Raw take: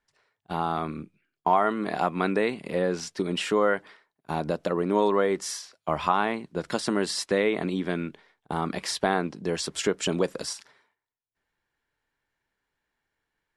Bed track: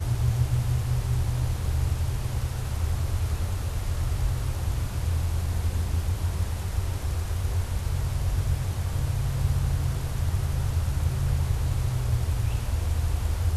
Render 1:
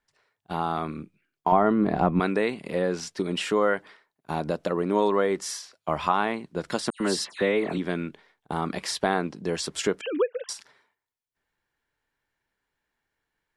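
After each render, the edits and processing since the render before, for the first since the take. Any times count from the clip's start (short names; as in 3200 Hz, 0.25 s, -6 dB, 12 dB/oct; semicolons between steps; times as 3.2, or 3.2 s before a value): 1.52–2.2 tilt -4 dB/oct; 6.9–7.78 dispersion lows, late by 0.102 s, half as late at 2800 Hz; 10.01–10.49 sine-wave speech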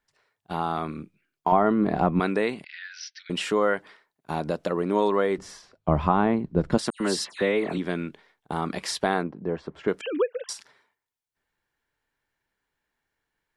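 2.64–3.3 Chebyshev band-pass 1500–5900 Hz, order 5; 5.38–6.78 tilt -4.5 dB/oct; 9.23–9.88 LPF 1200 Hz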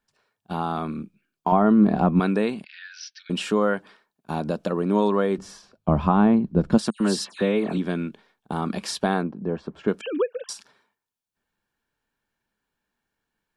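bell 210 Hz +8.5 dB 0.53 oct; notch 2000 Hz, Q 5.9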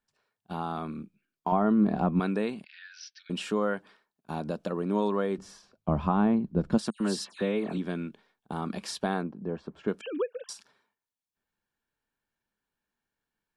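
gain -6.5 dB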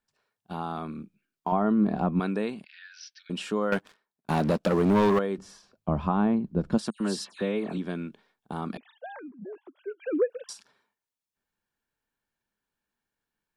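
3.72–5.19 sample leveller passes 3; 8.77–10.3 sine-wave speech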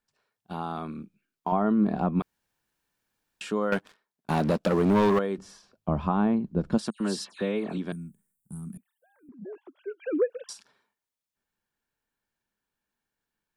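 2.22–3.41 room tone; 7.92–9.29 EQ curve 190 Hz 0 dB, 280 Hz -14 dB, 700 Hz -29 dB, 1500 Hz -22 dB, 4500 Hz -30 dB, 8200 Hz +13 dB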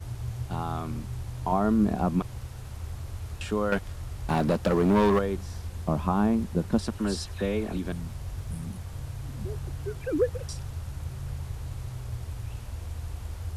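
add bed track -10 dB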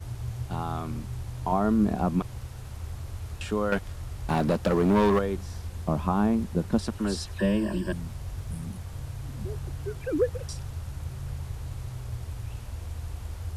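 7.39–7.93 ripple EQ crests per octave 1.3, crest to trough 16 dB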